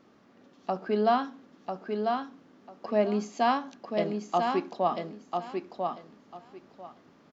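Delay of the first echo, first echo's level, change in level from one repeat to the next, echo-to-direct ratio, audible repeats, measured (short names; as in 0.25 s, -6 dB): 0.995 s, -4.5 dB, -14.5 dB, -4.5 dB, 3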